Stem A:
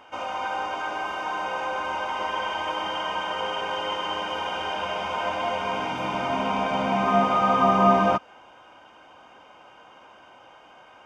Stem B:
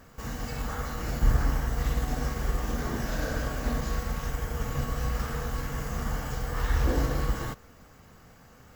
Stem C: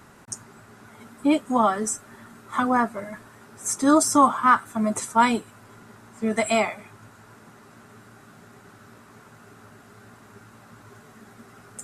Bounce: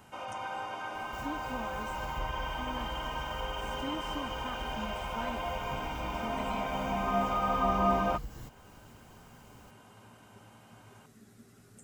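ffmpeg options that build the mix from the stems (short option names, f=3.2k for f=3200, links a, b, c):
-filter_complex "[0:a]volume=-9dB[a];[1:a]adelay=950,volume=-2.5dB[b];[2:a]acrossover=split=3300[c][d];[d]acompressor=threshold=-46dB:ratio=4:attack=1:release=60[e];[c][e]amix=inputs=2:normalize=0,volume=-5.5dB[f];[b][f]amix=inputs=2:normalize=0,equalizer=f=1.1k:w=0.63:g=-13,acompressor=threshold=-46dB:ratio=2,volume=0dB[g];[a][g]amix=inputs=2:normalize=0"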